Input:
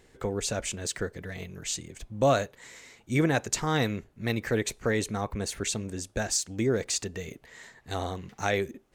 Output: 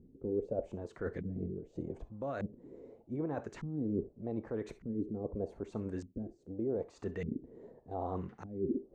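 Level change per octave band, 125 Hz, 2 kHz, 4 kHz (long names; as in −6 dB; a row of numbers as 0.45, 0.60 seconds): −9.5 dB, −20.5 dB, below −30 dB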